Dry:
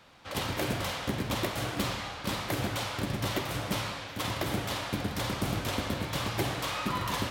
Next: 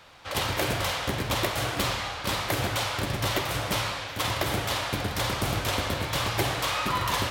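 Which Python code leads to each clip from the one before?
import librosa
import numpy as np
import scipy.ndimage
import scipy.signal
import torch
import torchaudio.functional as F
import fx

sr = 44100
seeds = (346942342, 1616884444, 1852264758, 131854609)

y = fx.peak_eq(x, sr, hz=220.0, db=-8.0, octaves=1.3)
y = y * 10.0 ** (6.0 / 20.0)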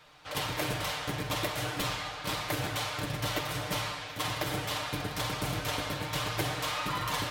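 y = x + 0.65 * np.pad(x, (int(6.6 * sr / 1000.0), 0))[:len(x)]
y = y * 10.0 ** (-6.5 / 20.0)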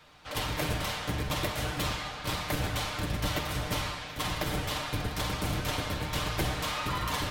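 y = fx.octave_divider(x, sr, octaves=1, level_db=2.0)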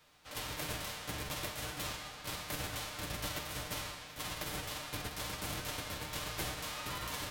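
y = fx.envelope_flatten(x, sr, power=0.6)
y = y * 10.0 ** (-9.0 / 20.0)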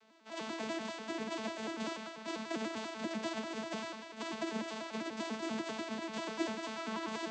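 y = fx.vocoder_arp(x, sr, chord='bare fifth', root=57, every_ms=98)
y = y * 10.0 ** (3.0 / 20.0)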